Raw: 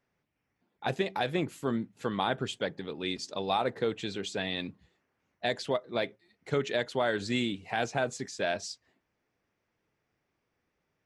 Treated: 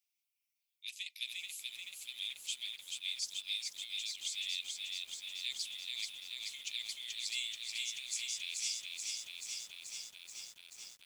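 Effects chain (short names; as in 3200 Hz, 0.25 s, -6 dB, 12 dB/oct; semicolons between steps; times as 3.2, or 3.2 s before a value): steep high-pass 2200 Hz 72 dB/oct; differentiator; lo-fi delay 0.432 s, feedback 80%, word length 11-bit, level -3 dB; gain +4.5 dB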